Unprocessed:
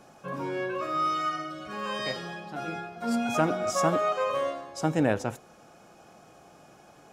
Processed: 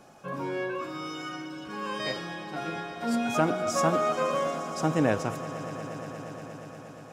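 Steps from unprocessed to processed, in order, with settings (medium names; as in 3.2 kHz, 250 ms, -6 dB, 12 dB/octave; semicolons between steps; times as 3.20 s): 0.70–2.00 s: comb of notches 630 Hz; echo with a slow build-up 118 ms, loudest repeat 5, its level -17.5 dB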